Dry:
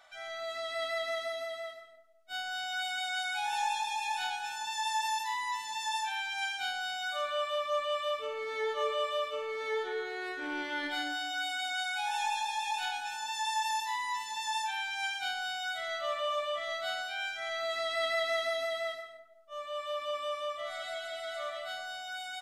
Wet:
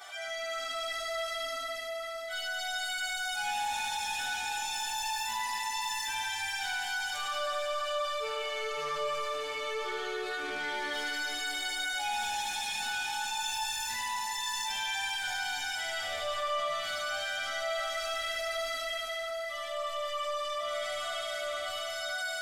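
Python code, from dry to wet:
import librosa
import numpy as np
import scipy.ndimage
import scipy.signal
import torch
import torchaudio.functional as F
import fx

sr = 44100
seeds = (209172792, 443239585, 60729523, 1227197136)

y = scipy.signal.sosfilt(scipy.signal.butter(2, 53.0, 'highpass', fs=sr, output='sos'), x)
y = fx.high_shelf(y, sr, hz=3800.0, db=9.5)
y = fx.notch(y, sr, hz=3900.0, q=13.0)
y = 10.0 ** (-32.0 / 20.0) * np.tanh(y / 10.0 ** (-32.0 / 20.0))
y = fx.chorus_voices(y, sr, voices=4, hz=0.25, base_ms=11, depth_ms=2.6, mix_pct=65)
y = y + 10.0 ** (-3.0 / 20.0) * np.pad(y, (int(76 * sr / 1000.0), 0))[:len(y)]
y = fx.rev_plate(y, sr, seeds[0], rt60_s=4.6, hf_ratio=0.95, predelay_ms=0, drr_db=-0.5)
y = fx.env_flatten(y, sr, amount_pct=50)
y = y * librosa.db_to_amplitude(-4.0)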